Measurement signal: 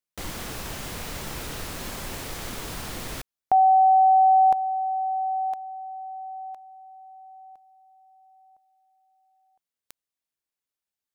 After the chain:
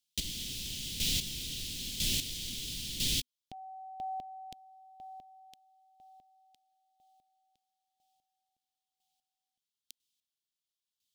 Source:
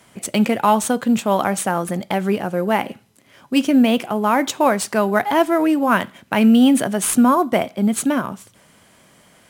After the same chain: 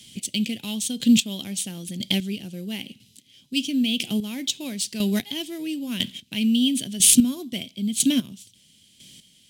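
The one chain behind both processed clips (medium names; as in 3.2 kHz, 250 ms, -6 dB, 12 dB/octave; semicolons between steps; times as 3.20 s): square tremolo 1 Hz, depth 65%, duty 20%; FFT filter 250 Hz 0 dB, 840 Hz -24 dB, 1.3 kHz -26 dB, 3.2 kHz +12 dB, 12 kHz +3 dB; trim +1 dB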